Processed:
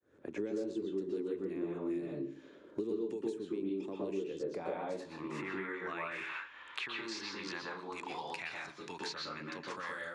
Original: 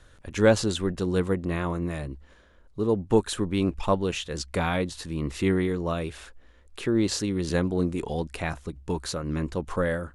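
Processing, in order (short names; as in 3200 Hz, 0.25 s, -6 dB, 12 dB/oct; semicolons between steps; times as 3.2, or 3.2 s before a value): opening faded in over 1.11 s; compressor 5:1, threshold -29 dBFS, peak gain reduction 13.5 dB; band-pass sweep 390 Hz -> 4900 Hz, 4.13–7.07; dynamic EQ 300 Hz, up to +5 dB, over -47 dBFS, Q 0.82; HPF 76 Hz; 6.05–8.33 bell 990 Hz +12 dB 0.79 oct; reverb RT60 0.40 s, pre-delay 0.112 s, DRR -1 dB; three-band squash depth 100%; gain -4 dB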